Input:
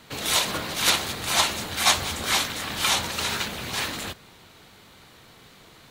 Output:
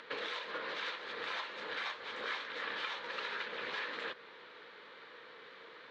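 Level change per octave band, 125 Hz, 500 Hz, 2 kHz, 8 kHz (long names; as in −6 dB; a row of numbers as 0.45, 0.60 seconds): below −30 dB, −9.5 dB, −10.5 dB, −37.5 dB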